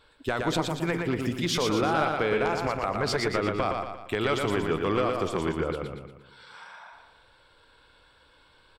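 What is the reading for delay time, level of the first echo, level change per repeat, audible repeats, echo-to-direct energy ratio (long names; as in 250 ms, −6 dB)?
117 ms, −4.0 dB, −6.5 dB, 5, −3.0 dB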